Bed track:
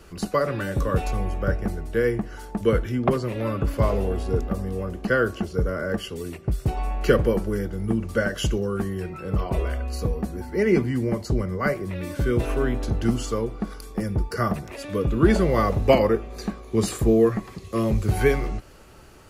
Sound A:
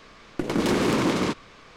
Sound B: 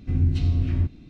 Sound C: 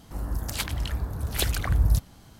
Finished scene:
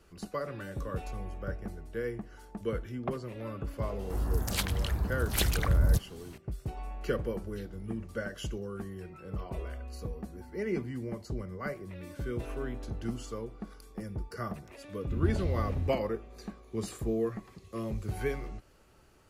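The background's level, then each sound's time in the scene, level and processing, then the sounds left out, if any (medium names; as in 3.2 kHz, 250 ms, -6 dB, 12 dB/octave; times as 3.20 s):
bed track -13 dB
3.99 s: add C -1 dB + saturation -15 dBFS
7.21 s: add B -14 dB + spectral noise reduction 16 dB
15.02 s: add B -10.5 dB
not used: A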